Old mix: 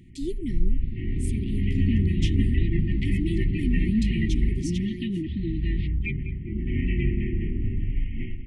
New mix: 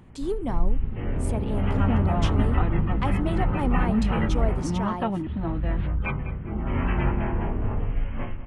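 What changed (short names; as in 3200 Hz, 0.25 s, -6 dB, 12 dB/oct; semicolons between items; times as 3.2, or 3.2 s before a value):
second sound: add air absorption 270 m; master: remove brick-wall FIR band-stop 400–1800 Hz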